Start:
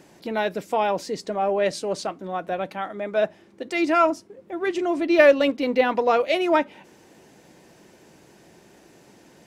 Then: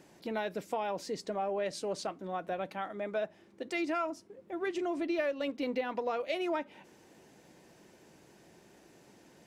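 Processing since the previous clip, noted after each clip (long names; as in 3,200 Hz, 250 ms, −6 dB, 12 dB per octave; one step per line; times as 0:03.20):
downward compressor 6 to 1, threshold −23 dBFS, peak gain reduction 12.5 dB
level −7 dB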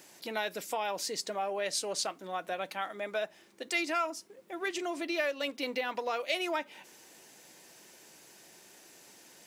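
spectral tilt +3.5 dB per octave
level +2 dB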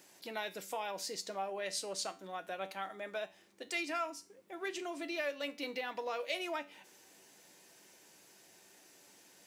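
tuned comb filter 96 Hz, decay 0.34 s, harmonics all, mix 60%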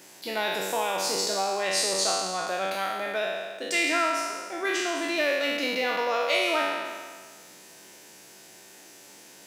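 peak hold with a decay on every bin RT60 1.60 s
level +8.5 dB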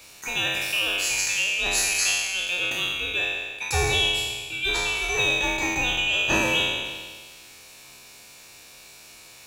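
neighbouring bands swapped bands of 2,000 Hz
level +2.5 dB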